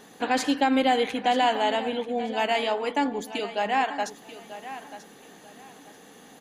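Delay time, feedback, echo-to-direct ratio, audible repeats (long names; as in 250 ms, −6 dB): 937 ms, 25%, −13.5 dB, 2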